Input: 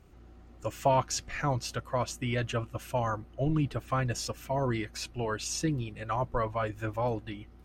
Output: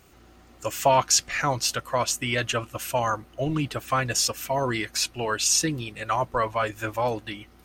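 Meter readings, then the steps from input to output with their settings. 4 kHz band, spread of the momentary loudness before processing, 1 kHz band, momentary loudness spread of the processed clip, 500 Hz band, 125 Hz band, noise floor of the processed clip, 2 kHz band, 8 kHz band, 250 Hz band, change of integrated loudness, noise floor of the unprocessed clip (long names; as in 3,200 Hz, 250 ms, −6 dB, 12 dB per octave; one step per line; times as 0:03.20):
+12.5 dB, 6 LU, +7.0 dB, 8 LU, +5.0 dB, −0.5 dB, −53 dBFS, +9.5 dB, +14.0 dB, +2.0 dB, +7.0 dB, −53 dBFS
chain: spectral tilt +2.5 dB per octave
level +7 dB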